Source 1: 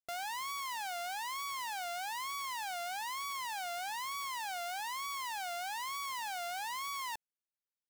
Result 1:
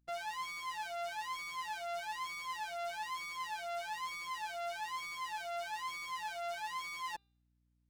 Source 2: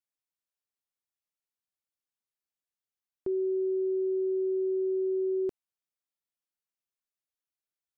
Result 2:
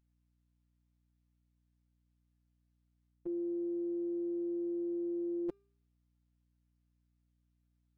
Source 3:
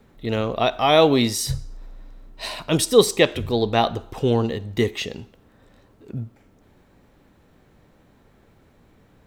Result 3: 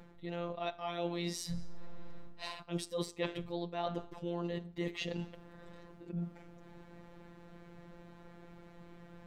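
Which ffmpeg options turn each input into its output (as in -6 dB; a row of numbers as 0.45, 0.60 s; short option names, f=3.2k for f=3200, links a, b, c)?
-af "afftfilt=real='hypot(re,im)*cos(PI*b)':imag='0':win_size=1024:overlap=0.75,aemphasis=mode=reproduction:type=50kf,areverse,acompressor=threshold=-41dB:ratio=6,areverse,bandreject=f=398.6:t=h:w=4,bandreject=f=797.2:t=h:w=4,bandreject=f=1.1958k:t=h:w=4,bandreject=f=1.5944k:t=h:w=4,bandreject=f=1.993k:t=h:w=4,bandreject=f=2.3916k:t=h:w=4,bandreject=f=2.7902k:t=h:w=4,bandreject=f=3.1888k:t=h:w=4,bandreject=f=3.5874k:t=h:w=4,bandreject=f=3.986k:t=h:w=4,bandreject=f=4.3846k:t=h:w=4,bandreject=f=4.7832k:t=h:w=4,bandreject=f=5.1818k:t=h:w=4,bandreject=f=5.5804k:t=h:w=4,aeval=exprs='val(0)+0.0001*(sin(2*PI*60*n/s)+sin(2*PI*2*60*n/s)/2+sin(2*PI*3*60*n/s)/3+sin(2*PI*4*60*n/s)/4+sin(2*PI*5*60*n/s)/5)':c=same,volume=5.5dB"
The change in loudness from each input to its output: -2.0, -7.0, -19.0 LU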